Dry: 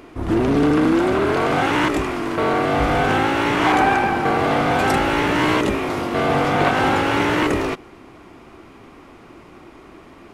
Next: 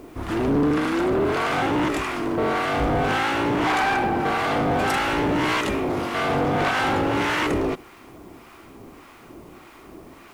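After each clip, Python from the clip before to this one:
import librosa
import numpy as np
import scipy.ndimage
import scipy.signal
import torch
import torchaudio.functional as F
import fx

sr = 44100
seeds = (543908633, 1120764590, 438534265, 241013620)

y = fx.harmonic_tremolo(x, sr, hz=1.7, depth_pct=70, crossover_hz=850.0)
y = 10.0 ** (-18.0 / 20.0) * np.tanh(y / 10.0 ** (-18.0 / 20.0))
y = fx.dmg_noise_colour(y, sr, seeds[0], colour='white', level_db=-63.0)
y = F.gain(torch.from_numpy(y), 2.0).numpy()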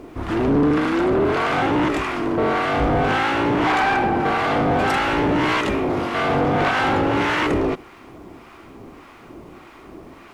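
y = fx.high_shelf(x, sr, hz=7200.0, db=-12.0)
y = F.gain(torch.from_numpy(y), 3.0).numpy()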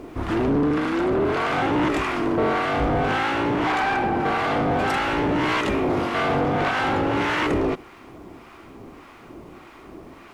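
y = fx.rider(x, sr, range_db=4, speed_s=0.5)
y = F.gain(torch.from_numpy(y), -2.5).numpy()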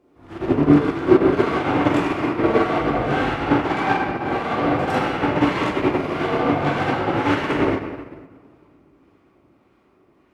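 y = scipy.signal.sosfilt(scipy.signal.butter(2, 57.0, 'highpass', fs=sr, output='sos'), x)
y = fx.room_shoebox(y, sr, seeds[1], volume_m3=140.0, walls='hard', distance_m=0.85)
y = fx.upward_expand(y, sr, threshold_db=-25.0, expansion=2.5)
y = F.gain(torch.from_numpy(y), 1.0).numpy()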